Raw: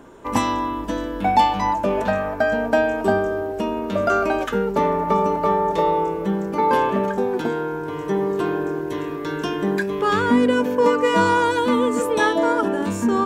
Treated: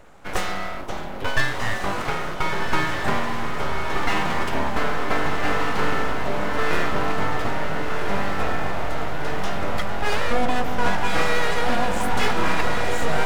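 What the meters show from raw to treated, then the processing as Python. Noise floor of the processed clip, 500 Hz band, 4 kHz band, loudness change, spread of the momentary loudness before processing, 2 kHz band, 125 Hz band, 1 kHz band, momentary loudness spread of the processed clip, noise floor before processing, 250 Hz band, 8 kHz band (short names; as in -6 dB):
-28 dBFS, -7.5 dB, +2.5 dB, -4.0 dB, 8 LU, +1.5 dB, +0.5 dB, -4.5 dB, 5 LU, -29 dBFS, -8.0 dB, n/a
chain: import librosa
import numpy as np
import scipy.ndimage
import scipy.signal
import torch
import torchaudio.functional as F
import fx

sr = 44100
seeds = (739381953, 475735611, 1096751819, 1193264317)

y = np.abs(x)
y = fx.echo_diffused(y, sr, ms=1455, feedback_pct=58, wet_db=-3.0)
y = y * librosa.db_to_amplitude(-2.0)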